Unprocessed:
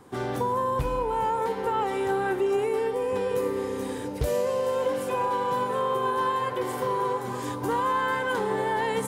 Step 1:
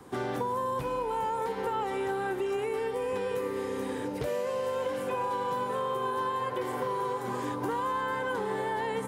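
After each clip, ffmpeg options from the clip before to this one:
-filter_complex "[0:a]acrossover=split=130|1300|2900[a][b][c][d];[a]acompressor=threshold=-55dB:ratio=4[e];[b]acompressor=threshold=-32dB:ratio=4[f];[c]acompressor=threshold=-44dB:ratio=4[g];[d]acompressor=threshold=-54dB:ratio=4[h];[e][f][g][h]amix=inputs=4:normalize=0,volume=1.5dB"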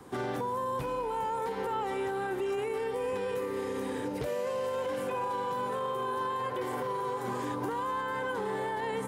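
-af "alimiter=level_in=1.5dB:limit=-24dB:level=0:latency=1:release=19,volume=-1.5dB"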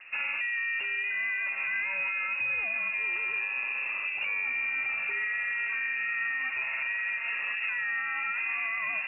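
-af "lowpass=f=2.5k:t=q:w=0.5098,lowpass=f=2.5k:t=q:w=0.6013,lowpass=f=2.5k:t=q:w=0.9,lowpass=f=2.5k:t=q:w=2.563,afreqshift=-2900,volume=1.5dB"

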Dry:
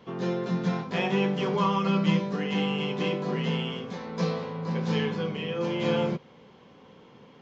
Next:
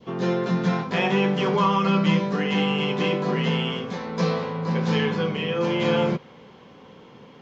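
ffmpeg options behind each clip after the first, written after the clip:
-filter_complex "[0:a]adynamicequalizer=threshold=0.0126:dfrequency=1500:dqfactor=0.73:tfrequency=1500:tqfactor=0.73:attack=5:release=100:ratio=0.375:range=1.5:mode=boostabove:tftype=bell,asplit=2[a][b];[b]alimiter=limit=-20dB:level=0:latency=1,volume=-2dB[c];[a][c]amix=inputs=2:normalize=0"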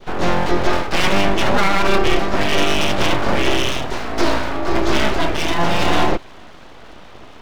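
-af "aeval=exprs='abs(val(0))':c=same,alimiter=level_in=12.5dB:limit=-1dB:release=50:level=0:latency=1,volume=-3dB"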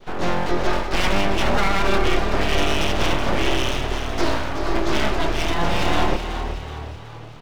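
-filter_complex "[0:a]asplit=6[a][b][c][d][e][f];[b]adelay=374,afreqshift=38,volume=-9dB[g];[c]adelay=748,afreqshift=76,volume=-15.7dB[h];[d]adelay=1122,afreqshift=114,volume=-22.5dB[i];[e]adelay=1496,afreqshift=152,volume=-29.2dB[j];[f]adelay=1870,afreqshift=190,volume=-36dB[k];[a][g][h][i][j][k]amix=inputs=6:normalize=0,volume=-4.5dB"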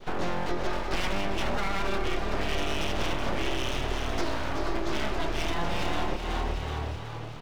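-af "acompressor=threshold=-25dB:ratio=4"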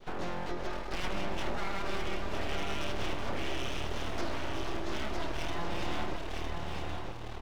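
-filter_complex "[0:a]aeval=exprs='max(val(0),0)':c=same,asplit=2[a][b];[b]aecho=0:1:958:0.596[c];[a][c]amix=inputs=2:normalize=0,volume=-6.5dB"

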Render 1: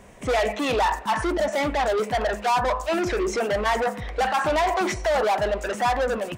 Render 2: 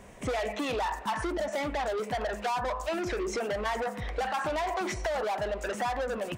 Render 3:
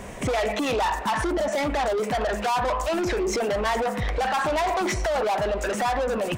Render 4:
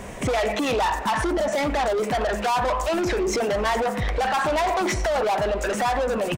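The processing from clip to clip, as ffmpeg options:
-af "acompressor=threshold=-26dB:ratio=6,volume=-2dB"
-filter_complex "[0:a]asplit=2[a][b];[b]alimiter=level_in=6.5dB:limit=-24dB:level=0:latency=1:release=353,volume=-6.5dB,volume=0dB[c];[a][c]amix=inputs=2:normalize=0,asoftclip=type=tanh:threshold=-26dB,volume=6.5dB"
-filter_complex "[0:a]asplit=5[a][b][c][d][e];[b]adelay=90,afreqshift=-64,volume=-23dB[f];[c]adelay=180,afreqshift=-128,volume=-27.6dB[g];[d]adelay=270,afreqshift=-192,volume=-32.2dB[h];[e]adelay=360,afreqshift=-256,volume=-36.7dB[i];[a][f][g][h][i]amix=inputs=5:normalize=0,volume=1.5dB"

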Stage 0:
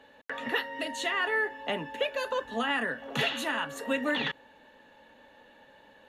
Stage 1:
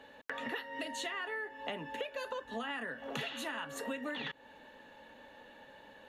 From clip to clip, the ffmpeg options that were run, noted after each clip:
-af "acompressor=threshold=-38dB:ratio=6,volume=1dB"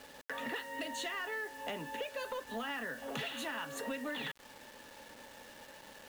-af "acrusher=bits=8:mix=0:aa=0.000001,asoftclip=type=tanh:threshold=-31dB,volume=1dB"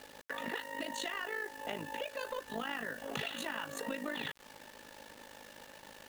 -af "tremolo=f=52:d=0.75,volume=3.5dB"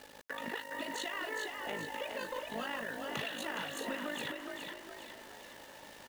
-filter_complex "[0:a]asplit=7[a][b][c][d][e][f][g];[b]adelay=415,afreqshift=41,volume=-4.5dB[h];[c]adelay=830,afreqshift=82,volume=-11.2dB[i];[d]adelay=1245,afreqshift=123,volume=-18dB[j];[e]adelay=1660,afreqshift=164,volume=-24.7dB[k];[f]adelay=2075,afreqshift=205,volume=-31.5dB[l];[g]adelay=2490,afreqshift=246,volume=-38.2dB[m];[a][h][i][j][k][l][m]amix=inputs=7:normalize=0,volume=-1dB"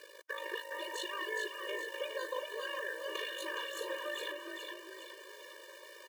-af "afftfilt=real='re*eq(mod(floor(b*sr/1024/310),2),1)':imag='im*eq(mod(floor(b*sr/1024/310),2),1)':win_size=1024:overlap=0.75,volume=2.5dB"

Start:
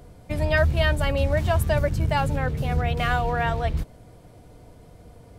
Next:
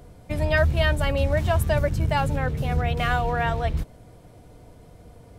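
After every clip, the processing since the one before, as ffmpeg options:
-af "bandreject=f=4.6k:w=30"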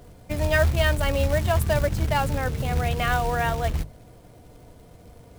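-af "acrusher=bits=4:mode=log:mix=0:aa=0.000001,bandreject=f=50:t=h:w=6,bandreject=f=100:t=h:w=6,bandreject=f=150:t=h:w=6"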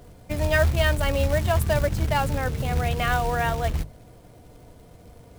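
-af anull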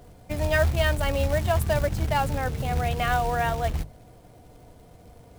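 -af "equalizer=f=760:t=o:w=0.32:g=4,volume=-2dB"

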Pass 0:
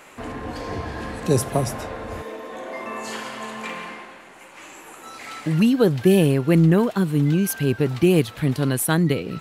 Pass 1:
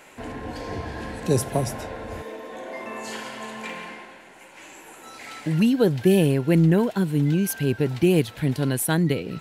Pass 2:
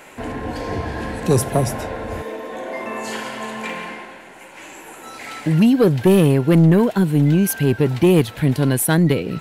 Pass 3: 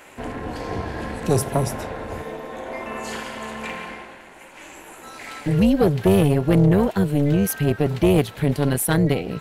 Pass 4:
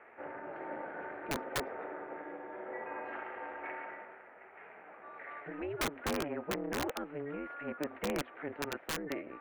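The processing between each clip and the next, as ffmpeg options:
-af "bandreject=f=1.2k:w=5.6,volume=-2dB"
-af "equalizer=f=5.1k:t=o:w=1.7:g=-3,aeval=exprs='0.422*sin(PI/2*1.41*val(0)/0.422)':c=same"
-af "tremolo=f=290:d=0.71"
-af "aeval=exprs='val(0)+0.0126*(sin(2*PI*50*n/s)+sin(2*PI*2*50*n/s)/2+sin(2*PI*3*50*n/s)/3+sin(2*PI*4*50*n/s)/4+sin(2*PI*5*50*n/s)/5)':c=same,highpass=f=530:t=q:w=0.5412,highpass=f=530:t=q:w=1.307,lowpass=f=2.3k:t=q:w=0.5176,lowpass=f=2.3k:t=q:w=0.7071,lowpass=f=2.3k:t=q:w=1.932,afreqshift=-150,aeval=exprs='(mod(8.41*val(0)+1,2)-1)/8.41':c=same,volume=-8.5dB"

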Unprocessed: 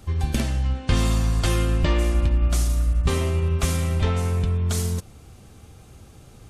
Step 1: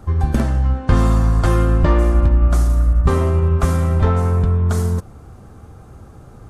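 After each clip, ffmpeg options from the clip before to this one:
-af "highshelf=f=1.9k:t=q:w=1.5:g=-10.5,volume=6.5dB"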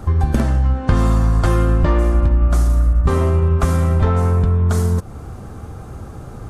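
-af "acompressor=threshold=-25dB:ratio=2,volume=7.5dB"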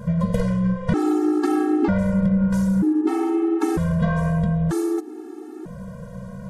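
-af "aeval=exprs='val(0)+0.0316*(sin(2*PI*60*n/s)+sin(2*PI*2*60*n/s)/2+sin(2*PI*3*60*n/s)/3+sin(2*PI*4*60*n/s)/4+sin(2*PI*5*60*n/s)/5)':c=same,aeval=exprs='val(0)*sin(2*PI*250*n/s)':c=same,afftfilt=real='re*gt(sin(2*PI*0.53*pts/sr)*(1-2*mod(floor(b*sr/1024/230),2)),0)':imag='im*gt(sin(2*PI*0.53*pts/sr)*(1-2*mod(floor(b*sr/1024/230),2)),0)':win_size=1024:overlap=0.75"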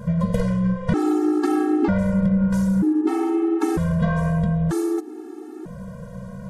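-af anull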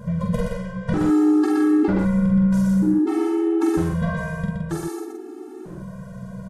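-filter_complex "[0:a]asplit=2[a][b];[b]adelay=46,volume=-4dB[c];[a][c]amix=inputs=2:normalize=0,aecho=1:1:121:0.631,volume=-3dB"

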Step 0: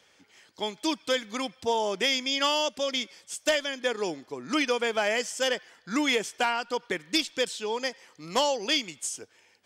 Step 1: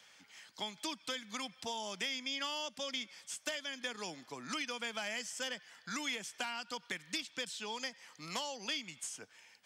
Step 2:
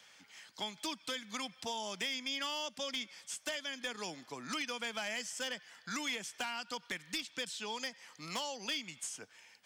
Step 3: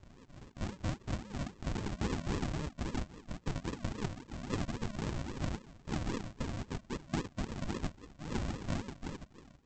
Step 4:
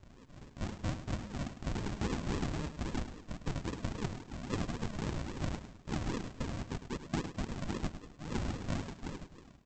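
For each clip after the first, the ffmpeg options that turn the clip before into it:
-filter_complex "[0:a]equalizer=f=390:t=o:w=1.3:g=-12.5,acrossover=split=230|2700[a][b][c];[a]acompressor=threshold=-54dB:ratio=4[d];[b]acompressor=threshold=-44dB:ratio=4[e];[c]acompressor=threshold=-45dB:ratio=4[f];[d][e][f]amix=inputs=3:normalize=0,highpass=150,volume=1.5dB"
-af "asoftclip=type=hard:threshold=-31dB,volume=1dB"
-filter_complex "[0:a]acrossover=split=420|3000[a][b][c];[b]acompressor=threshold=-40dB:ratio=6[d];[a][d][c]amix=inputs=3:normalize=0,aresample=16000,acrusher=samples=30:mix=1:aa=0.000001:lfo=1:lforange=18:lforate=3.7,aresample=44100,volume=4dB"
-af "aecho=1:1:104|208|312:0.282|0.0733|0.0191"

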